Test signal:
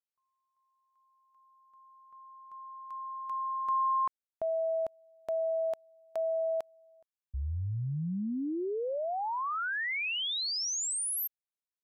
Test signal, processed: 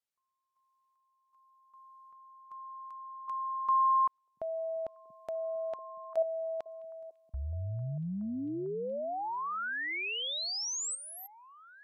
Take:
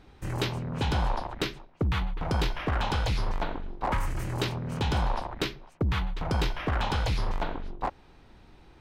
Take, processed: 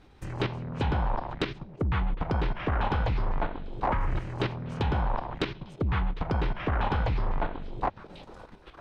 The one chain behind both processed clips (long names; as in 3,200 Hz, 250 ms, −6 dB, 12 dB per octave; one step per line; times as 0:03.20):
echo through a band-pass that steps 685 ms, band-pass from 170 Hz, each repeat 1.4 octaves, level −11.5 dB
treble cut that deepens with the level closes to 2,000 Hz, closed at −24 dBFS
output level in coarse steps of 10 dB
level +4.5 dB